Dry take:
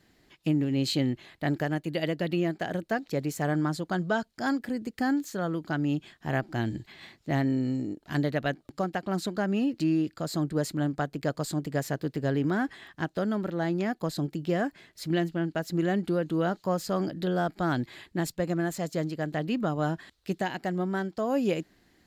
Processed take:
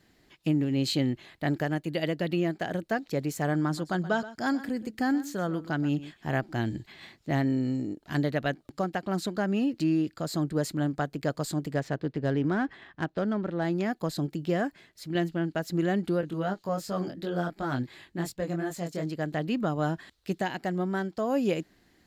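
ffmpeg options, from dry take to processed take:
-filter_complex "[0:a]asettb=1/sr,asplit=3[a][b][c];[a]atrim=end=3.584[d];[b]atrim=start=3.58:end=6.32,asetpts=PTS-STARTPTS,afade=t=in:d=0.004:c=qsin,afade=t=out:st=2.736:d=0.004:c=qsin,aecho=1:1:125:0.168,atrim=end_sample=120834[e];[c]atrim=start=6.316[f];[d][e]acrossfade=d=0.004:c1=hsin:c2=qsin[g];[g][f]acrossfade=d=0.004:c1=qsin:c2=hsin,asettb=1/sr,asplit=3[h][i][j];[h]atrim=end=11.744[k];[i]atrim=start=11.74:end=13.65,asetpts=PTS-STARTPTS,afade=t=in:d=0.004:c=qsin,afade=t=out:st=1.906:d=0.004:c=qsin,adynamicsmooth=sensitivity=5.5:basefreq=3.2k[l];[j]atrim=start=13.646[m];[k][l]acrossfade=d=0.004:c1=hsin:c2=qsin[n];[n][m]acrossfade=d=0.004:c1=qsin:c2=hsin,asettb=1/sr,asplit=3[o][p][q];[o]atrim=end=16.214[r];[p]atrim=start=16.21:end=19.06,asetpts=PTS-STARTPTS,afade=t=in:d=0.004:c=qsin,afade=t=out:st=2.846:d=0.004:c=qsin,flanger=delay=19.5:depth=4.3:speed=2.8[s];[q]atrim=start=19.056[t];[r][s]acrossfade=d=0.004:c1=hsin:c2=qsin[u];[u][t]acrossfade=d=0.004:c1=qsin:c2=hsin,asplit=2[v][w];[v]atrim=end=15.15,asetpts=PTS-STARTPTS,afade=t=out:st=14.58:d=0.57:silence=0.473151[x];[w]atrim=start=15.15,asetpts=PTS-STARTPTS,afade=t=in:d=0.004:c=hsin:silence=0.473151[y];[x][y]concat=n=2:v=0:a=1"

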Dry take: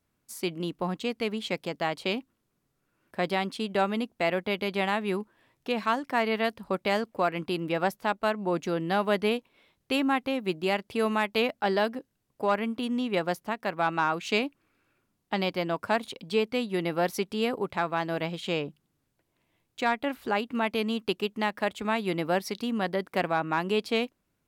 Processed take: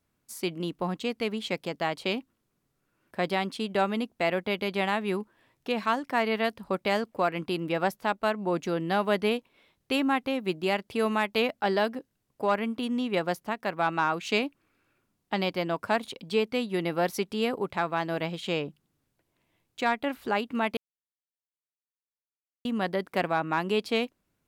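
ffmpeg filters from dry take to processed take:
-filter_complex "[0:a]asplit=3[a][b][c];[a]atrim=end=20.77,asetpts=PTS-STARTPTS,afade=t=out:st=20.766:d=0.004:c=hsin[d];[b]atrim=start=20.77:end=22.65,asetpts=PTS-STARTPTS,volume=0[e];[c]atrim=start=22.65,asetpts=PTS-STARTPTS,afade=t=in:d=0.004:c=hsin[f];[d][e][f]concat=n=3:v=0:a=1"

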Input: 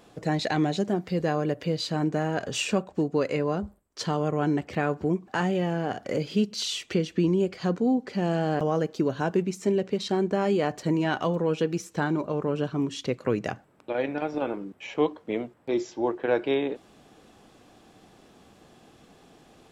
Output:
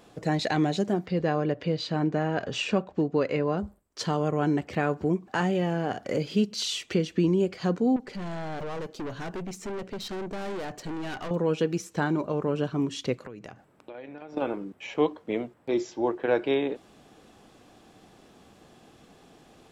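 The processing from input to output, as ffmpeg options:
-filter_complex "[0:a]asettb=1/sr,asplit=3[a][b][c];[a]atrim=end=1.064[d];[b]atrim=start=1.06:end=3.58,asetpts=PTS-STARTPTS,afade=t=in:d=0.004:c=qsin,afade=t=out:st=2.516:d=0.004:c=qsin,lowpass=4.4k[e];[c]atrim=start=3.576[f];[d][e]acrossfade=d=0.004:c1=hsin:c2=qsin[g];[g][f]acrossfade=d=0.004:c1=qsin:c2=hsin,asettb=1/sr,asplit=3[h][i][j];[h]atrim=end=7.964[k];[i]atrim=start=7.96:end=11.31,asetpts=PTS-STARTPTS,afade=t=in:d=0.004:c=qsin,afade=t=out:st=3.346:d=0.004:c=qsin,aeval=exprs='(tanh(39.8*val(0)+0.35)-tanh(0.35))/39.8':c=same[l];[j]atrim=start=11.306[m];[k][l]acrossfade=d=0.004:c1=hsin:c2=qsin[n];[n][m]acrossfade=d=0.004:c1=qsin:c2=hsin,asettb=1/sr,asplit=3[o][p][q];[o]atrim=end=13.164[r];[p]atrim=start=13.16:end=14.37,asetpts=PTS-STARTPTS,afade=t=in:d=0.004:c=qsin,afade=t=out:st=1.206:d=0.004:c=qsin,acompressor=threshold=-39dB:ratio=6:attack=3.2:release=140:knee=1:detection=peak[s];[q]atrim=start=14.366[t];[r][s]acrossfade=d=0.004:c1=hsin:c2=qsin[u];[u][t]acrossfade=d=0.004:c1=qsin:c2=hsin"

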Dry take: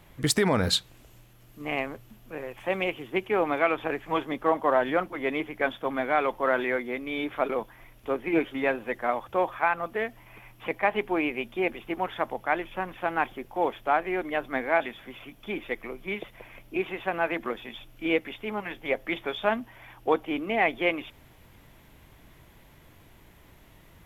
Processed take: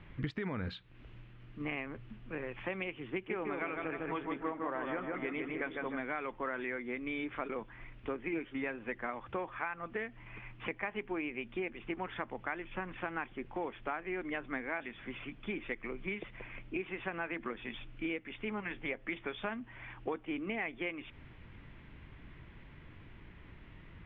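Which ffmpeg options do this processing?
-filter_complex "[0:a]asettb=1/sr,asplit=3[a][b][c];[a]atrim=end=3.124[d];[b]atrim=start=3.12:end=5.97,asetpts=PTS-STARTPTS,afade=t=in:d=0.004:c=qsin,afade=t=out:st=2.846:d=0.004:c=qsin,asplit=2[e][f];[f]adelay=153,lowpass=f=2k:p=1,volume=-3.5dB,asplit=2[g][h];[h]adelay=153,lowpass=f=2k:p=1,volume=0.54,asplit=2[i][j];[j]adelay=153,lowpass=f=2k:p=1,volume=0.54,asplit=2[k][l];[l]adelay=153,lowpass=f=2k:p=1,volume=0.54,asplit=2[m][n];[n]adelay=153,lowpass=f=2k:p=1,volume=0.54,asplit=2[o][p];[p]adelay=153,lowpass=f=2k:p=1,volume=0.54,asplit=2[q][r];[r]adelay=153,lowpass=f=2k:p=1,volume=0.54[s];[e][g][i][k][m][o][q][s]amix=inputs=8:normalize=0,atrim=end_sample=125685[t];[c]atrim=start=5.966[u];[d][t]acrossfade=d=0.004:c1=hsin:c2=qsin[v];[v][u]acrossfade=d=0.004:c1=qsin:c2=hsin,equalizer=f=680:w=1.1:g=-9.5,acompressor=threshold=-37dB:ratio=6,lowpass=f=2.8k:w=0.5412,lowpass=f=2.8k:w=1.3066,volume=2.5dB"

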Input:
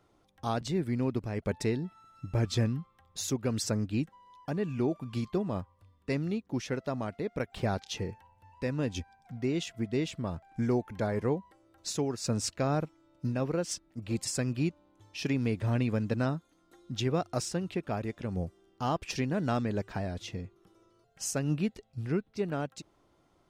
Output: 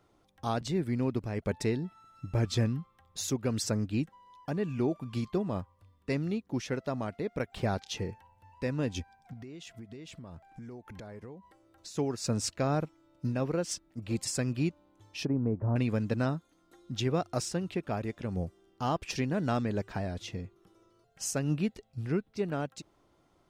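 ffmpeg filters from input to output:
-filter_complex "[0:a]asettb=1/sr,asplit=3[a][b][c];[a]atrim=end=9.334[d];[b]atrim=start=9.33:end=11.97,asetpts=PTS-STARTPTS,afade=t=in:d=0.004:c=qsin,afade=t=out:st=2.636:d=0.004:c=qsin,acompressor=threshold=-42dB:ratio=10:attack=3.2:release=140:knee=1:detection=peak[e];[c]atrim=start=11.966[f];[d][e]acrossfade=d=0.004:c1=hsin:c2=qsin[g];[g][f]acrossfade=d=0.004:c1=qsin:c2=hsin,asettb=1/sr,asplit=3[h][i][j];[h]atrim=end=15.254[k];[i]atrim=start=15.25:end=15.76,asetpts=PTS-STARTPTS,afade=t=in:d=0.004:c=qsin,afade=t=out:st=0.506:d=0.004:c=qsin,lowpass=f=1.1k:w=0.5412,lowpass=f=1.1k:w=1.3066[l];[j]atrim=start=15.756[m];[k][l]acrossfade=d=0.004:c1=hsin:c2=qsin[n];[n][m]acrossfade=d=0.004:c1=qsin:c2=hsin"

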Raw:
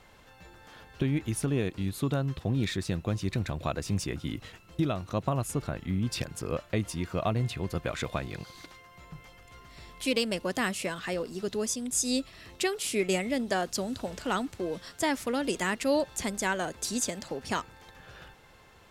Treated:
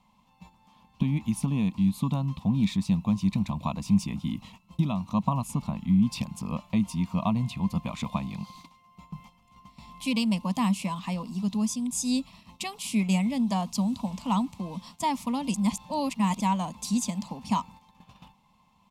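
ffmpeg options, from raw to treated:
-filter_complex "[0:a]asplit=3[a][b][c];[a]atrim=end=15.542[d];[b]atrim=start=15.538:end=16.402,asetpts=PTS-STARTPTS,areverse[e];[c]atrim=start=16.398[f];[d][e]acrossfade=d=0.004:c1=hsin:c2=hsin[g];[g][f]acrossfade=d=0.004:c1=hsin:c2=hsin,firequalizer=gain_entry='entry(110,0);entry(200,14);entry(370,-20);entry(1000,6);entry(1500,-25);entry(2300,-5)':delay=0.05:min_phase=1,agate=range=-9dB:threshold=-48dB:ratio=16:detection=peak,bass=f=250:g=-7,treble=f=4k:g=-2,volume=4dB"

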